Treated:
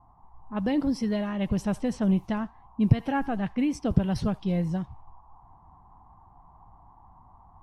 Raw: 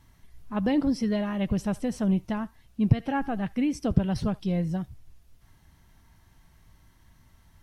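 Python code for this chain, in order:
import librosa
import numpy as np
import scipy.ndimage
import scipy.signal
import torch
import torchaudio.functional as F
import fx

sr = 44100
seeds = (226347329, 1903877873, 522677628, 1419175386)

y = fx.env_lowpass(x, sr, base_hz=570.0, full_db=-23.0)
y = fx.dmg_noise_band(y, sr, seeds[0], low_hz=720.0, high_hz=1100.0, level_db=-58.0)
y = fx.rider(y, sr, range_db=10, speed_s=2.0)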